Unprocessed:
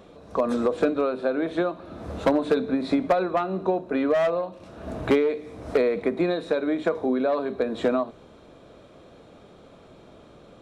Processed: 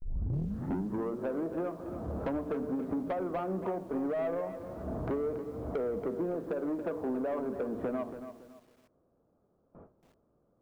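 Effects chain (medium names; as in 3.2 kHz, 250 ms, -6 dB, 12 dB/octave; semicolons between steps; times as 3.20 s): tape start-up on the opening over 1.25 s; gate with hold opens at -38 dBFS; low-pass 1.3 kHz 24 dB/octave; bass shelf 440 Hz +4 dB; compression 2.5:1, threshold -27 dBFS, peak gain reduction 9.5 dB; saturation -24 dBFS, distortion -14 dB; spring tank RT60 1.6 s, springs 36 ms, chirp 35 ms, DRR 18.5 dB; bit-crushed delay 280 ms, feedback 35%, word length 9-bit, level -10 dB; trim -3.5 dB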